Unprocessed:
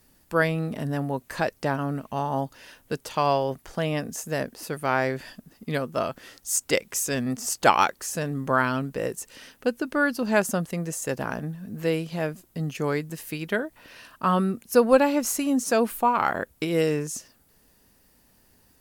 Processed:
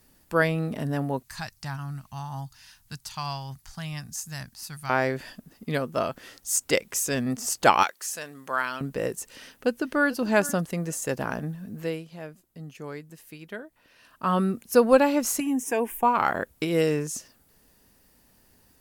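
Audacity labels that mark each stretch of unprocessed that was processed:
1.230000	4.900000	EQ curve 130 Hz 0 dB, 220 Hz -12 dB, 340 Hz -22 dB, 510 Hz -29 dB, 780 Hz -10 dB, 1200 Hz -8 dB, 3100 Hz -6 dB, 4500 Hz +2 dB, 16000 Hz -2 dB
7.830000	8.810000	HPF 1500 Hz 6 dB/oct
9.340000	10.160000	echo throw 0.44 s, feedback 10%, level -17.5 dB
11.600000	14.440000	dip -11.5 dB, fades 0.46 s
15.400000	16.030000	fixed phaser centre 870 Hz, stages 8

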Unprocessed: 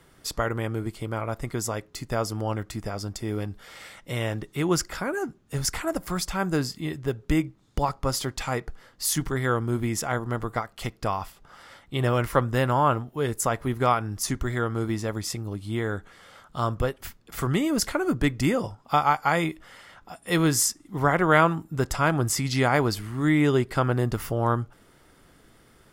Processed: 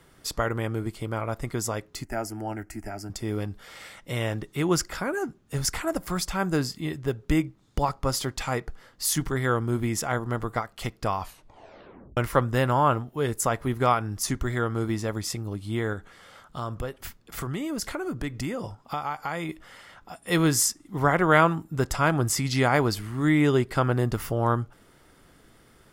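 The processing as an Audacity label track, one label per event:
2.040000	3.100000	fixed phaser centre 740 Hz, stages 8
11.190000	11.190000	tape stop 0.98 s
15.930000	19.490000	compressor 2.5:1, threshold -30 dBFS

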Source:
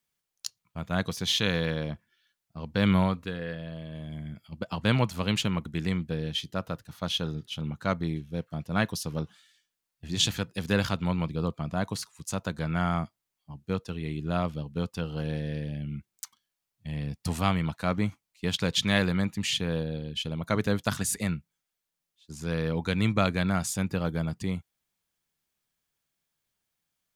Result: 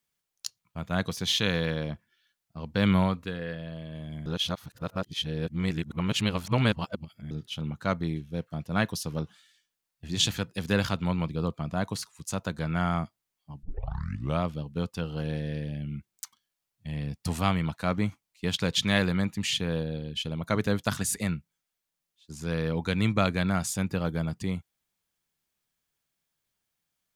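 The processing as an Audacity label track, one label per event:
4.260000	7.310000	reverse
13.630000	13.630000	tape start 0.78 s

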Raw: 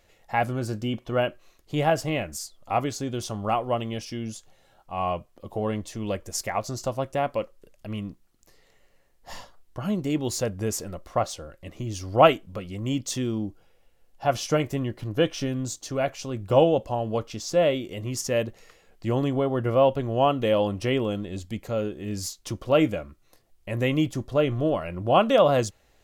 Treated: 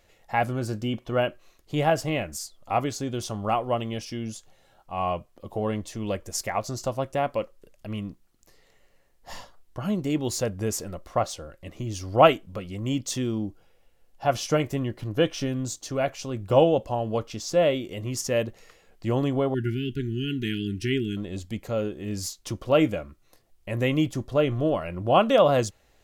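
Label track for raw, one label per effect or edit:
19.540000	21.170000	brick-wall FIR band-stop 420–1400 Hz

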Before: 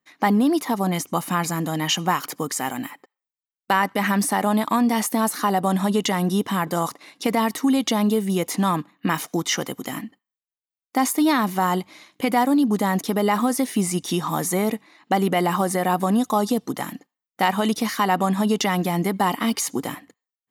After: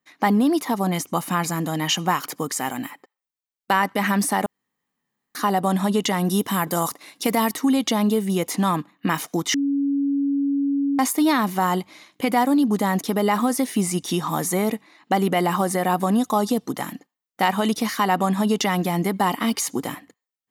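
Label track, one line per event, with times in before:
4.460000	5.350000	room tone
6.250000	7.520000	high shelf 8200 Hz +11.5 dB
9.540000	10.990000	bleep 280 Hz -18.5 dBFS

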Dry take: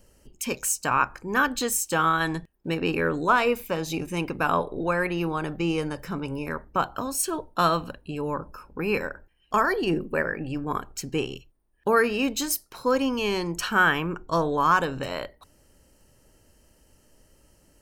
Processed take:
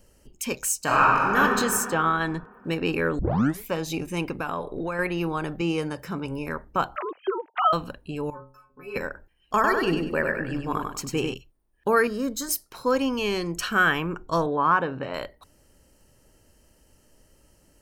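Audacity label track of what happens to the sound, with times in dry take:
0.830000	1.380000	reverb throw, RT60 2.4 s, DRR -5 dB
1.900000	2.520000	LPF 2500 Hz 6 dB/oct
3.190000	3.190000	tape start 0.47 s
4.360000	4.990000	compressor 5:1, threshold -25 dBFS
5.610000	6.250000	HPF 72 Hz
6.960000	7.730000	sine-wave speech
8.300000	8.960000	metallic resonator 130 Hz, decay 0.39 s, inharmonicity 0.008
9.540000	11.340000	feedback echo 98 ms, feedback 34%, level -4 dB
12.070000	12.490000	fixed phaser centre 530 Hz, stages 8
13.230000	13.910000	notch 900 Hz, Q 5.1
14.460000	15.140000	BPF 110–2200 Hz

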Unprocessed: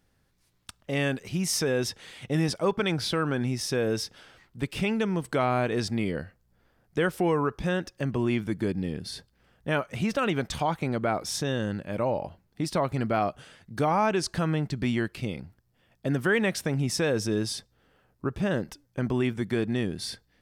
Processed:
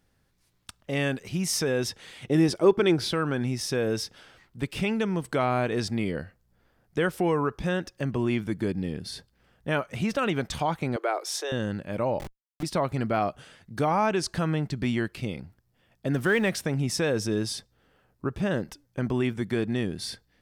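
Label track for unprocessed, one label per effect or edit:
2.250000	3.100000	bell 360 Hz +12 dB 0.45 oct
10.960000	11.520000	steep high-pass 340 Hz 72 dB/oct
12.190000	12.630000	Schmitt trigger flips at -35 dBFS
16.140000	16.560000	G.711 law mismatch coded by mu

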